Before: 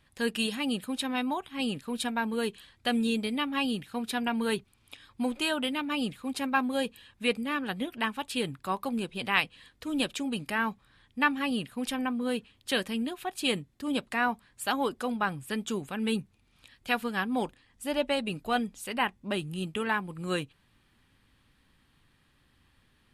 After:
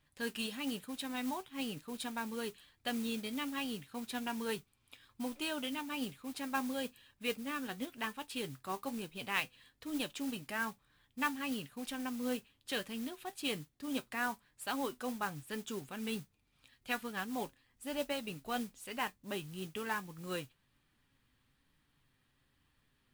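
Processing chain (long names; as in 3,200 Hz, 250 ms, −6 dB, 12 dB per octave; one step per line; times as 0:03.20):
flanger 1.1 Hz, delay 6.5 ms, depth 1.6 ms, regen +66%
noise that follows the level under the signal 14 dB
level −4.5 dB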